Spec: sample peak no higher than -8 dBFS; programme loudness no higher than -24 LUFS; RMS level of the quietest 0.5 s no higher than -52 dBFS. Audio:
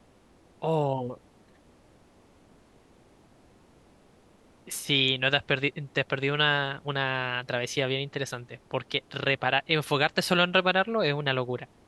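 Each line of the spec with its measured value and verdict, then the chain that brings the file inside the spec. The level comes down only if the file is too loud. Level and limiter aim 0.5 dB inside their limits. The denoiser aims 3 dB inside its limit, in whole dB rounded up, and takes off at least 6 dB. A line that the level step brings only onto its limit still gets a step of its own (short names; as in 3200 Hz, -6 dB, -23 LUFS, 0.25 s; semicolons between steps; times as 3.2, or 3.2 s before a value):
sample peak -7.0 dBFS: fail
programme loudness -27.0 LUFS: OK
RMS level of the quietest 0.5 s -59 dBFS: OK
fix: limiter -8.5 dBFS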